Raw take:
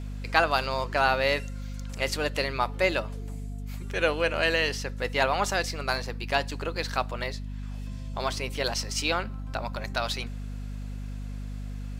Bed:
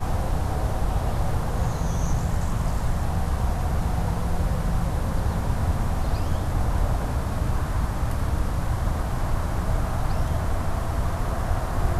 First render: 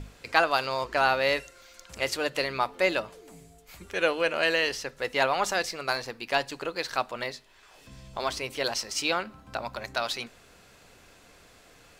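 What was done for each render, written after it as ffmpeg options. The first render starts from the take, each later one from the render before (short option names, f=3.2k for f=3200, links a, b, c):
-af "bandreject=f=50:t=h:w=6,bandreject=f=100:t=h:w=6,bandreject=f=150:t=h:w=6,bandreject=f=200:t=h:w=6,bandreject=f=250:t=h:w=6"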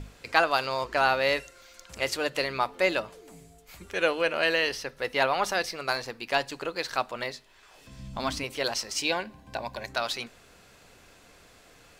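-filter_complex "[0:a]asettb=1/sr,asplit=3[a][b][c];[a]atrim=end=4.224[d];[b]atrim=start=4.22:end=5.78,asetpts=PTS-STARTPTS,afade=t=in:d=0.004:c=qsin,afade=t=out:st=1.556:d=0.004:c=qsin,equalizer=f=7.3k:t=o:w=0.27:g=-8[e];[c]atrim=start=5.776[f];[d][e]acrossfade=d=0.004:c1=hsin:c2=qsin[g];[g][f]acrossfade=d=0.004:c1=qsin:c2=hsin,asettb=1/sr,asplit=3[h][i][j];[h]atrim=end=7.994[k];[i]atrim=start=7.99:end=8.44,asetpts=PTS-STARTPTS,afade=t=in:d=0.004:c=qsin,afade=t=out:st=0.446:d=0.004:c=qsin,lowshelf=f=320:t=q:w=3:g=6[l];[j]atrim=start=8.436[m];[k][l]acrossfade=d=0.004:c1=hsin:c2=qsin[n];[n][m]acrossfade=d=0.004:c1=qsin:c2=hsin,asettb=1/sr,asplit=3[o][p][q];[o]atrim=end=8.984[r];[p]atrim=start=8.98:end=9.9,asetpts=PTS-STARTPTS,afade=t=in:d=0.004:c=qsin,afade=t=out:st=0.916:d=0.004:c=qsin,asuperstop=centerf=1300:order=8:qfactor=4.9[s];[q]atrim=start=9.896[t];[r][s]acrossfade=d=0.004:c1=hsin:c2=qsin[u];[u][t]acrossfade=d=0.004:c1=qsin:c2=hsin"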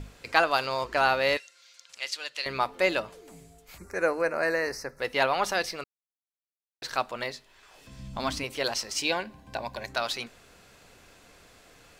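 -filter_complex "[0:a]asettb=1/sr,asplit=3[a][b][c];[a]atrim=end=1.374[d];[b]atrim=start=1.37:end=2.46,asetpts=PTS-STARTPTS,afade=t=in:d=0.004:c=qsin,afade=t=out:st=1.086:d=0.004:c=qsin,bandpass=f=4.3k:t=q:w=0.9[e];[c]atrim=start=2.456[f];[d][e]acrossfade=d=0.004:c1=hsin:c2=qsin[g];[g][f]acrossfade=d=0.004:c1=qsin:c2=hsin,asettb=1/sr,asplit=3[h][i][j];[h]atrim=end=3.784[k];[i]atrim=start=3.78:end=5,asetpts=PTS-STARTPTS,afade=t=in:d=0.004:c=qsin,afade=t=out:st=1.216:d=0.004:c=qsin,asuperstop=centerf=3200:order=4:qfactor=1.1[l];[j]atrim=start=4.996[m];[k][l]acrossfade=d=0.004:c1=hsin:c2=qsin[n];[n][m]acrossfade=d=0.004:c1=qsin:c2=hsin,asplit=3[o][p][q];[o]atrim=end=5.84,asetpts=PTS-STARTPTS,afade=t=out:st=5.836:d=0.004:c=hsin[r];[p]atrim=start=5.84:end=6.82,asetpts=PTS-STARTPTS,volume=0[s];[q]atrim=start=6.82,asetpts=PTS-STARTPTS,afade=t=in:d=0.004:c=hsin[t];[r][s][t]concat=n=3:v=0:a=1"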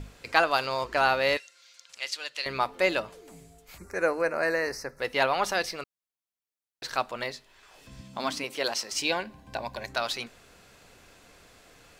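-filter_complex "[0:a]asettb=1/sr,asplit=3[a][b][c];[a]atrim=end=8.014[d];[b]atrim=start=8.01:end=8.92,asetpts=PTS-STARTPTS,afade=t=in:d=0.004:c=qsin,afade=t=out:st=0.906:d=0.004:c=qsin,highpass=200[e];[c]atrim=start=8.916[f];[d][e]acrossfade=d=0.004:c1=hsin:c2=qsin[g];[g][f]acrossfade=d=0.004:c1=qsin:c2=hsin"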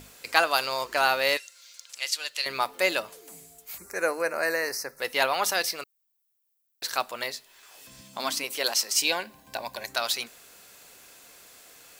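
-af "aemphasis=mode=production:type=bsi"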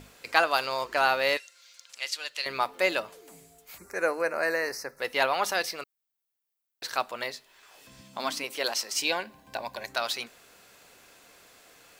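-af "highshelf=f=5.1k:g=-9.5"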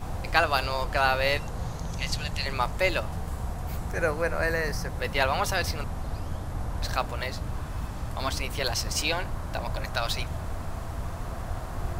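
-filter_complex "[1:a]volume=-8.5dB[a];[0:a][a]amix=inputs=2:normalize=0"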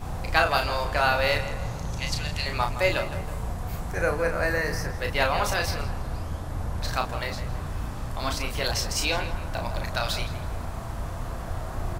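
-filter_complex "[0:a]asplit=2[a][b];[b]adelay=34,volume=-5.5dB[c];[a][c]amix=inputs=2:normalize=0,asplit=2[d][e];[e]adelay=163,lowpass=f=3.1k:p=1,volume=-11dB,asplit=2[f][g];[g]adelay=163,lowpass=f=3.1k:p=1,volume=0.49,asplit=2[h][i];[i]adelay=163,lowpass=f=3.1k:p=1,volume=0.49,asplit=2[j][k];[k]adelay=163,lowpass=f=3.1k:p=1,volume=0.49,asplit=2[l][m];[m]adelay=163,lowpass=f=3.1k:p=1,volume=0.49[n];[d][f][h][j][l][n]amix=inputs=6:normalize=0"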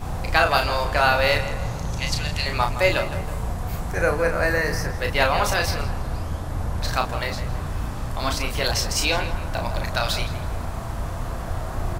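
-af "volume=4dB,alimiter=limit=-3dB:level=0:latency=1"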